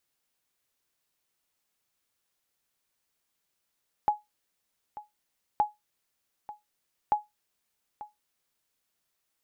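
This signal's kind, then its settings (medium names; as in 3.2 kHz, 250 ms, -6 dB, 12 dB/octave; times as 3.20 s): sonar ping 839 Hz, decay 0.18 s, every 1.52 s, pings 3, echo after 0.89 s, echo -17 dB -15.5 dBFS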